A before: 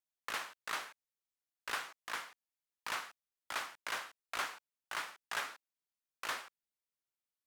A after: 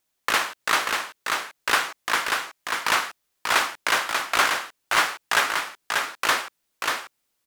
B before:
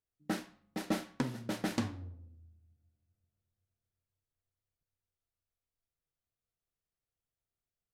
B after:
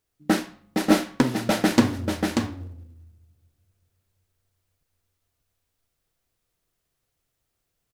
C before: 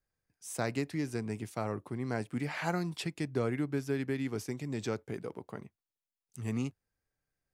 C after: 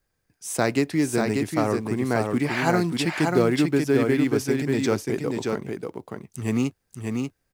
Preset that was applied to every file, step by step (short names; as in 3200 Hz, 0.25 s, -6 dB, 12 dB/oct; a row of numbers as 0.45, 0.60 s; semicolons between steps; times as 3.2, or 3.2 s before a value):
dynamic EQ 120 Hz, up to -4 dB, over -46 dBFS, Q 1.3; echo 0.588 s -4 dB; in parallel at -10 dB: short-mantissa float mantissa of 2-bit; on the sum: bell 330 Hz +2.5 dB 0.71 oct; match loudness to -24 LUFS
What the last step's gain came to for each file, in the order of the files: +15.0, +11.0, +8.5 dB